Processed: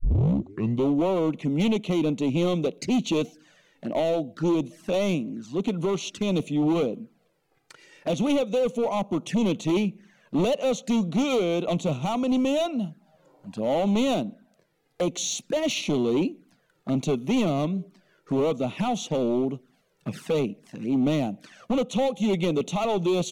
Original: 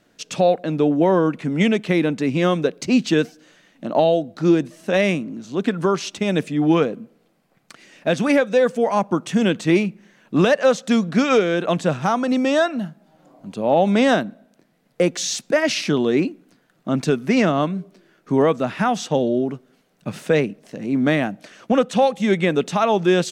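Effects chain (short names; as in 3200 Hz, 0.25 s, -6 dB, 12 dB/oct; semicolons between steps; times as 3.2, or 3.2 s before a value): tape start at the beginning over 0.92 s; hard clip -17 dBFS, distortion -9 dB; envelope flanger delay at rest 2.6 ms, full sweep at -23 dBFS; gain -2 dB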